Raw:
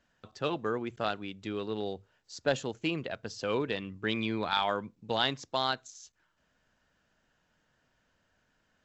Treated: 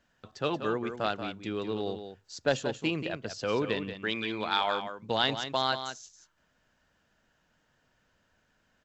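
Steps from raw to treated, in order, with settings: 3.93–4.96 low shelf 240 Hz -11 dB; echo 0.182 s -9 dB; gain +1.5 dB

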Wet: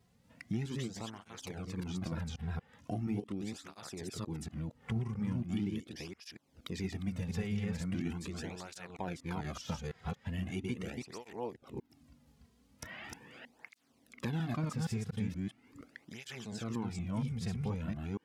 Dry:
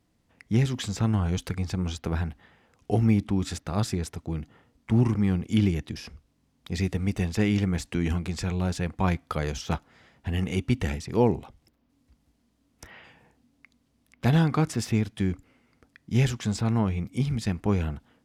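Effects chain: reverse delay 0.236 s, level -1.5 dB; compressor 3:1, threshold -40 dBFS, peak gain reduction 19.5 dB; tape flanging out of phase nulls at 0.4 Hz, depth 3.5 ms; gain +3.5 dB

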